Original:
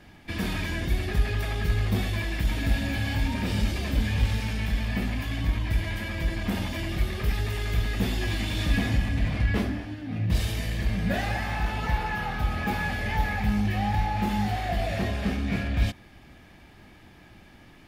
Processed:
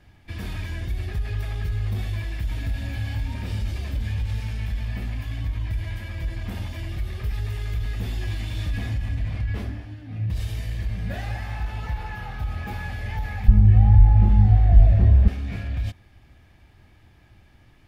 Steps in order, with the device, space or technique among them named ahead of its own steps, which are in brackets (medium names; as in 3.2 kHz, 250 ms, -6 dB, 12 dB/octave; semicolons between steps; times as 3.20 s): car stereo with a boomy subwoofer (resonant low shelf 140 Hz +7 dB, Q 1.5; peak limiter -12.5 dBFS, peak gain reduction 8.5 dB); 13.48–15.28 s: tilt EQ -4 dB/octave; trim -6.5 dB